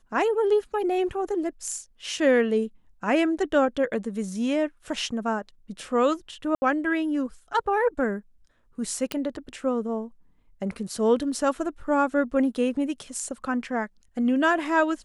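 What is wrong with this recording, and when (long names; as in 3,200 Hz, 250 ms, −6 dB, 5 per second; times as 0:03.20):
0:06.55–0:06.62: drop-out 70 ms
0:09.12: click −12 dBFS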